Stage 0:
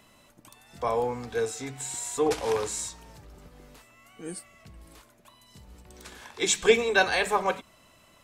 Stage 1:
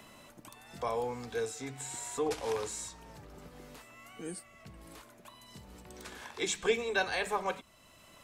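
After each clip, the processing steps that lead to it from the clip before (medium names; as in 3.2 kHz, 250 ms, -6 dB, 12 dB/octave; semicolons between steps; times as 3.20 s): three bands compressed up and down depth 40%; trim -6.5 dB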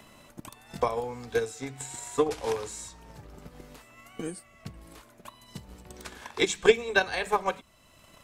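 bass shelf 120 Hz +5 dB; transient shaper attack +12 dB, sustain 0 dB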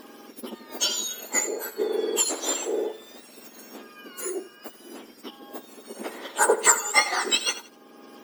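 spectrum inverted on a logarithmic axis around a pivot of 1.8 kHz; bit-crushed delay 84 ms, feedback 35%, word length 9-bit, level -15 dB; trim +8 dB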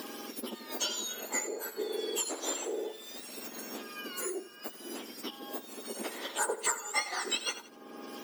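three bands compressed up and down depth 70%; trim -7.5 dB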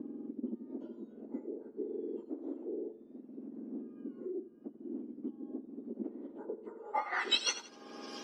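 low-pass sweep 280 Hz -> 5.4 kHz, 6.71–7.40 s; trim -2 dB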